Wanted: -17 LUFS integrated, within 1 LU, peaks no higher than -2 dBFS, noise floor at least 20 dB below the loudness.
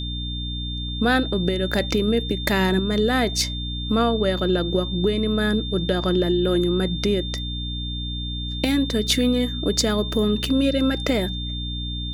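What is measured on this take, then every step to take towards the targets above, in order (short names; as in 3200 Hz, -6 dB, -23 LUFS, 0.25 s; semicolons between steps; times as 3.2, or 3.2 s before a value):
hum 60 Hz; harmonics up to 300 Hz; hum level -27 dBFS; steady tone 3600 Hz; tone level -31 dBFS; loudness -22.5 LUFS; peak -6.0 dBFS; loudness target -17.0 LUFS
-> notches 60/120/180/240/300 Hz; notch 3600 Hz, Q 30; gain +5.5 dB; limiter -2 dBFS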